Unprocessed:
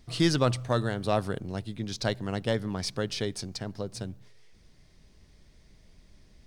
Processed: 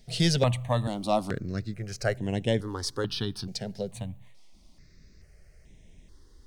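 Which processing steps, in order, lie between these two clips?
step phaser 2.3 Hz 300–4600 Hz; gain +3.5 dB

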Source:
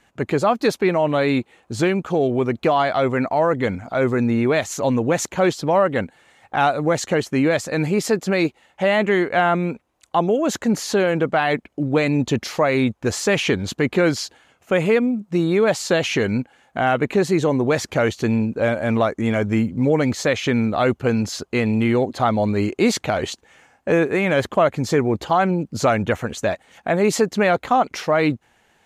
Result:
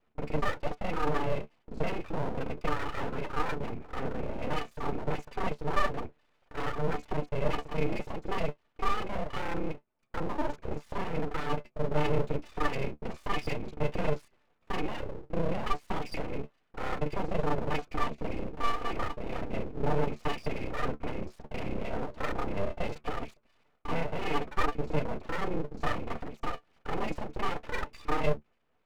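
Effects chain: local time reversal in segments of 30 ms; octave resonator D, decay 0.1 s; full-wave rectifier

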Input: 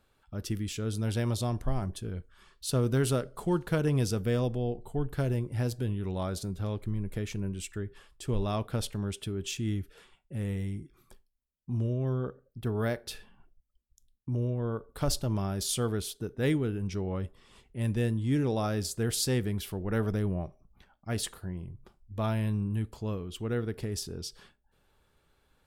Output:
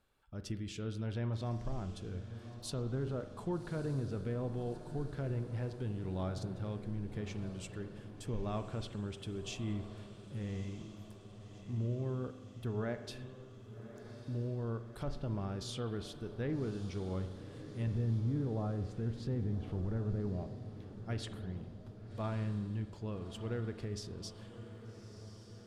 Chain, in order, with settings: 17.87–20.16 low shelf 210 Hz +10 dB; treble ducked by the level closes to 1200 Hz, closed at -22 dBFS; limiter -21.5 dBFS, peak gain reduction 8.5 dB; diffused feedback echo 1.19 s, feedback 60%, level -12 dB; spring tank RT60 1.4 s, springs 43 ms, chirp 65 ms, DRR 10 dB; gain -7 dB

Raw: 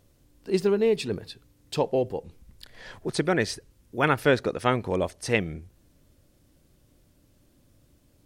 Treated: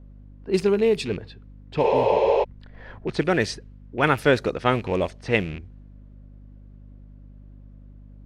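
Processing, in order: rattling part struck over -34 dBFS, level -30 dBFS; low-pass opened by the level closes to 1500 Hz, open at -18.5 dBFS; spectral repair 1.86–2.41, 330–7600 Hz before; hum 50 Hz, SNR 20 dB; gain +2.5 dB

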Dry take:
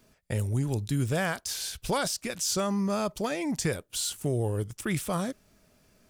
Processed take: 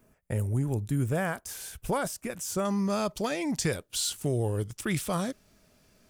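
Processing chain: bell 4300 Hz -13.5 dB 1.3 oct, from 2.65 s +2 dB

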